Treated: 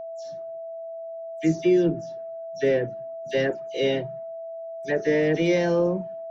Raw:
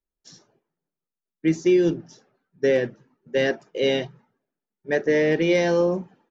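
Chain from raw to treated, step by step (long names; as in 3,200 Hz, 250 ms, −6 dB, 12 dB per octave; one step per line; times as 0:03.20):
every frequency bin delayed by itself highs early, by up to 101 ms
low-shelf EQ 230 Hz +5.5 dB
steady tone 660 Hz −30 dBFS
level −3 dB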